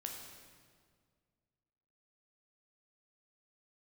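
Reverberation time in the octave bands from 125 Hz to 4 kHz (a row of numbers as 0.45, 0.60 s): 2.4, 2.3, 2.0, 1.8, 1.6, 1.4 s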